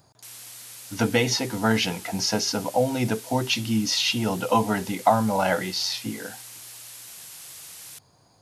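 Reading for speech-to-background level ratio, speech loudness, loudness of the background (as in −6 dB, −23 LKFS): 15.5 dB, −24.0 LKFS, −39.5 LKFS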